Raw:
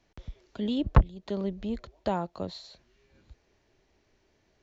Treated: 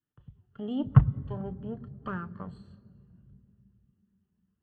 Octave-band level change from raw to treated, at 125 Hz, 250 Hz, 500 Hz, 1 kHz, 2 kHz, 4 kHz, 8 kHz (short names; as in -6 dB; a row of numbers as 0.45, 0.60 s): +4.5 dB, -1.5 dB, -7.5 dB, -6.5 dB, -2.5 dB, under -10 dB, n/a